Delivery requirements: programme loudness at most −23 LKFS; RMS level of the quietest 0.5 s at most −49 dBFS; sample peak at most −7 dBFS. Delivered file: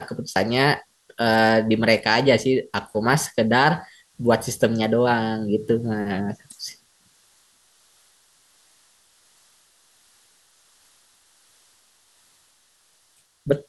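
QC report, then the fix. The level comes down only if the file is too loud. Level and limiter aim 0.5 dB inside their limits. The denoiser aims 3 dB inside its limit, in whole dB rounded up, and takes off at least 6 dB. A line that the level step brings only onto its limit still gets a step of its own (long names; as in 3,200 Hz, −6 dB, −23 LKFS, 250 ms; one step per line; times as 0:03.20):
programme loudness −21.0 LKFS: out of spec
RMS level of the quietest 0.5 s −62 dBFS: in spec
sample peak −3.5 dBFS: out of spec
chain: level −2.5 dB
brickwall limiter −7.5 dBFS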